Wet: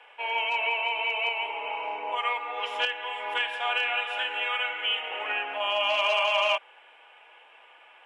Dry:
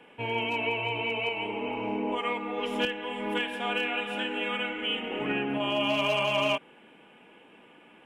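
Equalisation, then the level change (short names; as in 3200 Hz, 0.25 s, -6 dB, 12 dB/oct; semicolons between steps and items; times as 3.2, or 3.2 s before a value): HPF 660 Hz 24 dB/oct; tape spacing loss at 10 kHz 22 dB; high shelf 3700 Hz +11.5 dB; +5.5 dB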